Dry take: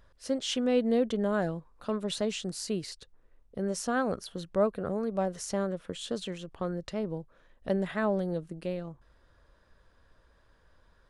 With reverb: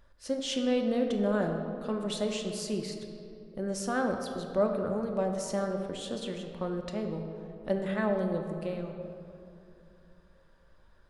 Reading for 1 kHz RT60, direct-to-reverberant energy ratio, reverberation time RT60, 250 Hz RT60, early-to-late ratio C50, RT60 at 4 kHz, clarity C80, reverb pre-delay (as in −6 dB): 2.6 s, 3.0 dB, 2.8 s, 2.9 s, 5.0 dB, 1.4 s, 6.5 dB, 3 ms